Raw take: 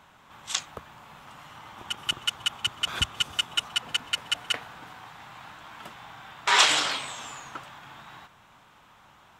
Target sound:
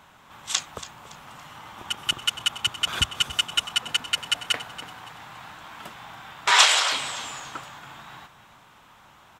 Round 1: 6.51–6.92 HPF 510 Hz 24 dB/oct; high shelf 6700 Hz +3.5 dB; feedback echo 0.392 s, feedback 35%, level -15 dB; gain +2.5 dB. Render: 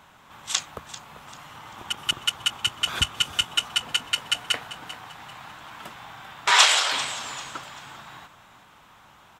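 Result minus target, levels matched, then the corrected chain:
echo 0.11 s late
6.51–6.92 HPF 510 Hz 24 dB/oct; high shelf 6700 Hz +3.5 dB; feedback echo 0.282 s, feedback 35%, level -15 dB; gain +2.5 dB

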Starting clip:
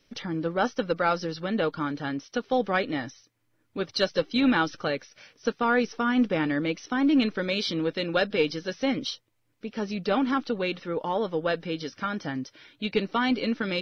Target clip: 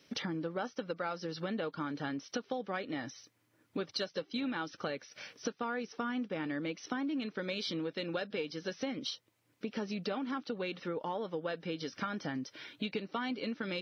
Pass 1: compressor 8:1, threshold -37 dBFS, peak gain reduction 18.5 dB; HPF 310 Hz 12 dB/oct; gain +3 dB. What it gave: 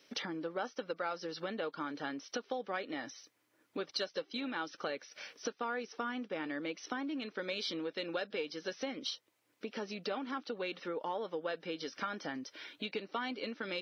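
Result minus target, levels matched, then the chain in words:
125 Hz band -8.0 dB
compressor 8:1, threshold -37 dBFS, peak gain reduction 18.5 dB; HPF 120 Hz 12 dB/oct; gain +3 dB

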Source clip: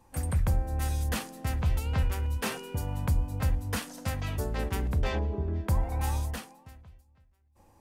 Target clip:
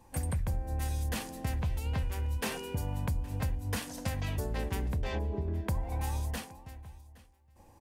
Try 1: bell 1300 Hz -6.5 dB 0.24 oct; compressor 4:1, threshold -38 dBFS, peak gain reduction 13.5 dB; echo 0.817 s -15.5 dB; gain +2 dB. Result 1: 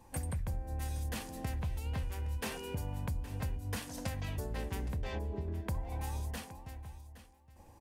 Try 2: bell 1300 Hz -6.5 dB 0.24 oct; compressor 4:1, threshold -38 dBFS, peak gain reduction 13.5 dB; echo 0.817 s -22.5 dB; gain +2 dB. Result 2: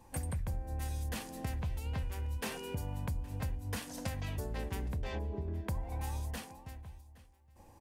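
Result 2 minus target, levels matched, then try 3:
compressor: peak gain reduction +4.5 dB
bell 1300 Hz -6.5 dB 0.24 oct; compressor 4:1, threshold -32 dBFS, peak gain reduction 9 dB; echo 0.817 s -22.5 dB; gain +2 dB

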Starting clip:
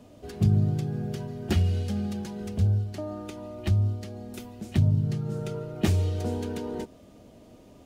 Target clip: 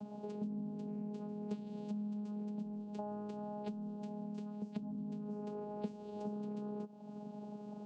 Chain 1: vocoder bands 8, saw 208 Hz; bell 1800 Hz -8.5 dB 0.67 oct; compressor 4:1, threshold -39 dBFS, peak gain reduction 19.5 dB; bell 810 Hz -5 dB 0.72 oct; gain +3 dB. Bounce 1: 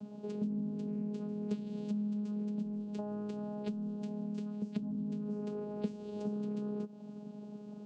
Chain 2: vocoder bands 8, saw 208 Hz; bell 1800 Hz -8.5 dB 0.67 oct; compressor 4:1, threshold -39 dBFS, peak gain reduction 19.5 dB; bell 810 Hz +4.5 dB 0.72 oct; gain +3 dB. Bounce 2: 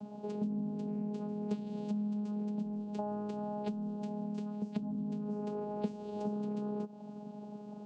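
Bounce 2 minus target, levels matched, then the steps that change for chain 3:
compressor: peak gain reduction -5 dB
change: compressor 4:1, threshold -46 dBFS, peak gain reduction 25 dB

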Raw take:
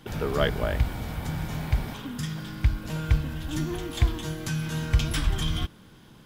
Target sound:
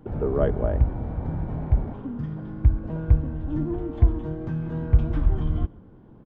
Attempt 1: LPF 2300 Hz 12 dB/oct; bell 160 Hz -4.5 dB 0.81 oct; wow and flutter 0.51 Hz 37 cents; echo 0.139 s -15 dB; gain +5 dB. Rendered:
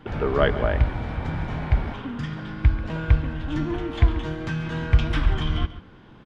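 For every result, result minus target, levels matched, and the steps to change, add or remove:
2000 Hz band +15.0 dB; echo-to-direct +9.5 dB
change: LPF 640 Hz 12 dB/oct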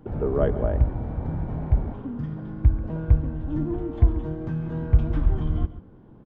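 echo-to-direct +9.5 dB
change: echo 0.139 s -24.5 dB

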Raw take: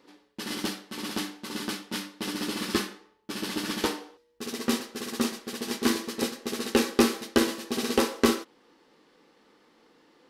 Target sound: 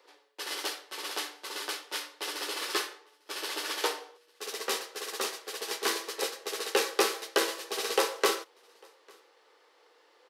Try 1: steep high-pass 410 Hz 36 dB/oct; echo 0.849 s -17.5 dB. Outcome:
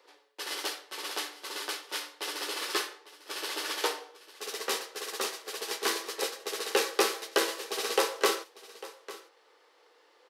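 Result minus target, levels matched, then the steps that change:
echo-to-direct +12 dB
change: echo 0.849 s -29.5 dB

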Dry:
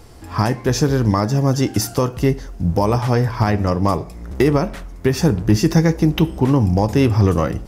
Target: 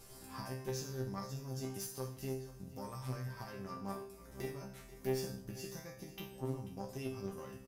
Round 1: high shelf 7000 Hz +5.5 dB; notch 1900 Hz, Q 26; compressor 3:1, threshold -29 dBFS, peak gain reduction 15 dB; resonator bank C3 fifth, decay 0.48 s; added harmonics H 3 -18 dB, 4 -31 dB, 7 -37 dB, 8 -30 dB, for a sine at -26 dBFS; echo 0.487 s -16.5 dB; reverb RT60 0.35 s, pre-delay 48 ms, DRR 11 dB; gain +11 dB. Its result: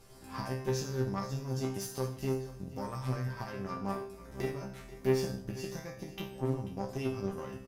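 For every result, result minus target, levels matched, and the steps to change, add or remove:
compressor: peak gain reduction -6 dB; 8000 Hz band -4.5 dB
change: compressor 3:1, threshold -38 dBFS, peak gain reduction 21 dB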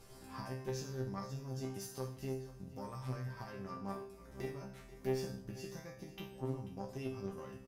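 8000 Hz band -4.0 dB
change: high shelf 7000 Hz +16.5 dB

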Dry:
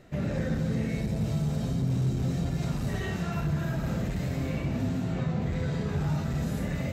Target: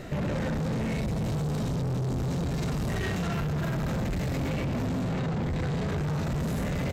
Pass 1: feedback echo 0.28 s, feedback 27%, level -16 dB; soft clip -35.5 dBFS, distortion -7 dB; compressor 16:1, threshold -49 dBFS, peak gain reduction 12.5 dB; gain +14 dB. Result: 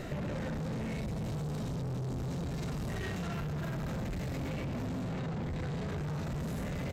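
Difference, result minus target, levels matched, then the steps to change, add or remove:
compressor: peak gain reduction +7 dB
change: compressor 16:1, threshold -41.5 dBFS, peak gain reduction 5.5 dB

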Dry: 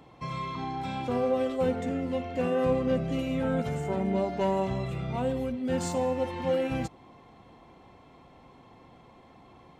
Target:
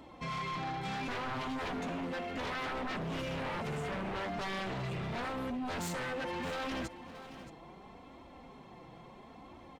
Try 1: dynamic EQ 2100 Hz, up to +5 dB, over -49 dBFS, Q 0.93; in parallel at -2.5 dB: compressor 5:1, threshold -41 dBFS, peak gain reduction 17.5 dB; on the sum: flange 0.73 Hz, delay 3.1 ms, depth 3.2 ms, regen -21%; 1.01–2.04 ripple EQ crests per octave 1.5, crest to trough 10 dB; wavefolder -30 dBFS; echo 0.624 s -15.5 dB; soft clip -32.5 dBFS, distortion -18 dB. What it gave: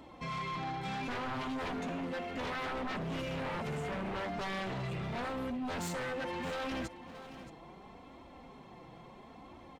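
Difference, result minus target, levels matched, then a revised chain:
compressor: peak gain reduction +5 dB
dynamic EQ 2100 Hz, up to +5 dB, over -49 dBFS, Q 0.93; in parallel at -2.5 dB: compressor 5:1, threshold -34.5 dBFS, peak gain reduction 12.5 dB; on the sum: flange 0.73 Hz, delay 3.1 ms, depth 3.2 ms, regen -21%; 1.01–2.04 ripple EQ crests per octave 1.5, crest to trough 10 dB; wavefolder -30 dBFS; echo 0.624 s -15.5 dB; soft clip -32.5 dBFS, distortion -18 dB

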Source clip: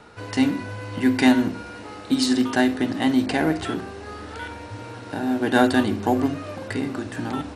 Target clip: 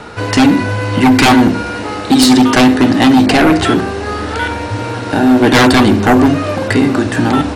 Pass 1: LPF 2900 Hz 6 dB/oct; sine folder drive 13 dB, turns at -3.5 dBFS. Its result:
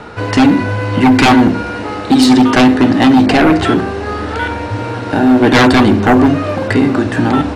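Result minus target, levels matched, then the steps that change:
8000 Hz band -5.5 dB
change: LPF 11000 Hz 6 dB/oct

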